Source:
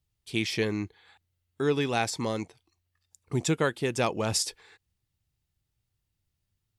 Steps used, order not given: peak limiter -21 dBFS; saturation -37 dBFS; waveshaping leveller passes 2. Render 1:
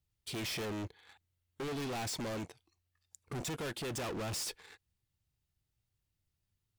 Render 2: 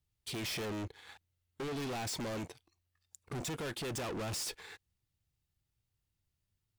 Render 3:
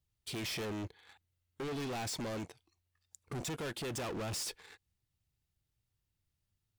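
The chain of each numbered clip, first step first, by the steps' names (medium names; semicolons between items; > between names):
waveshaping leveller > saturation > peak limiter; peak limiter > waveshaping leveller > saturation; waveshaping leveller > peak limiter > saturation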